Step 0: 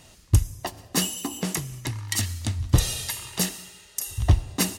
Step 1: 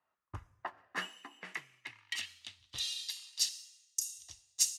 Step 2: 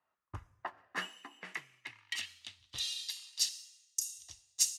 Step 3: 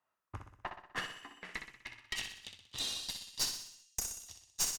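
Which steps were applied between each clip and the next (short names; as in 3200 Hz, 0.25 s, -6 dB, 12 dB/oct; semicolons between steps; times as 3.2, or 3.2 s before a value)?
band-pass sweep 1200 Hz -> 6300 Hz, 0.36–4.04; three-band expander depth 70%; gain -3 dB
nothing audible
tube stage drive 30 dB, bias 0.8; feedback echo 62 ms, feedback 52%, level -7.5 dB; gain +3.5 dB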